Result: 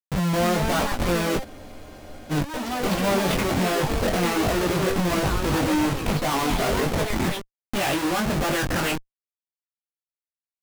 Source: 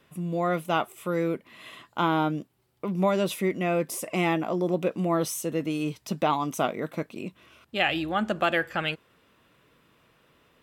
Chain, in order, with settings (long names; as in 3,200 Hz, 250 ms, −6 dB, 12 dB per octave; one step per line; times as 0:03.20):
gap after every zero crossing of 0.1 ms
in parallel at +2.5 dB: downward compressor 12 to 1, threshold −37 dBFS, peak gain reduction 18.5 dB
on the sum: comparator with hysteresis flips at −36.5 dBFS
chorus effect 1.3 Hz, delay 20 ms, depth 3.1 ms
delay with pitch and tempo change per echo 290 ms, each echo +4 semitones, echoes 2, each echo −6 dB
frozen spectrum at 0:01.47, 0.83 s
level +6.5 dB